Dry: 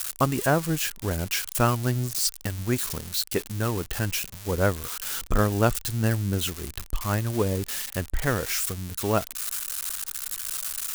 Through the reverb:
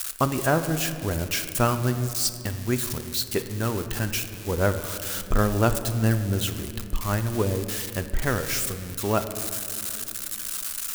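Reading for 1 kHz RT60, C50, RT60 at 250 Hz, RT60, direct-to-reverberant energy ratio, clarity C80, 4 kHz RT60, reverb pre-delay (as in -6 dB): 2.2 s, 10.5 dB, 4.1 s, 2.7 s, 8.5 dB, 11.0 dB, 1.4 s, 3 ms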